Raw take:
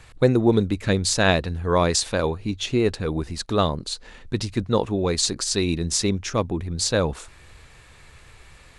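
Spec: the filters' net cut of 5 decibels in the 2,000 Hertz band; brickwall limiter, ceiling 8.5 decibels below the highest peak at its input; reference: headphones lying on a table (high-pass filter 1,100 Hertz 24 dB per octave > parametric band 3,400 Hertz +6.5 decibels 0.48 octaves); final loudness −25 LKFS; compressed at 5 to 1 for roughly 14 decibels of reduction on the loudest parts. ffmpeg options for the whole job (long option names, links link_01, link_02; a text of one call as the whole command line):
ffmpeg -i in.wav -af "equalizer=frequency=2000:width_type=o:gain=-7.5,acompressor=threshold=-29dB:ratio=5,alimiter=level_in=1.5dB:limit=-24dB:level=0:latency=1,volume=-1.5dB,highpass=frequency=1100:width=0.5412,highpass=frequency=1100:width=1.3066,equalizer=frequency=3400:width_type=o:width=0.48:gain=6.5,volume=13.5dB" out.wav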